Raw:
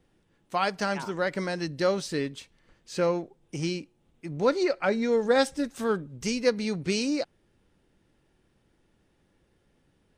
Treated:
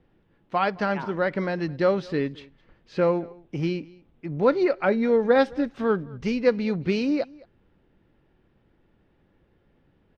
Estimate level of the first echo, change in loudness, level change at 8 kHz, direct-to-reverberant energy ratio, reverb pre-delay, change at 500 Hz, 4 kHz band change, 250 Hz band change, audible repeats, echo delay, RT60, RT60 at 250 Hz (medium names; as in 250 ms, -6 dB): -23.5 dB, +3.0 dB, under -15 dB, no reverb, no reverb, +3.5 dB, -5.0 dB, +4.0 dB, 1, 215 ms, no reverb, no reverb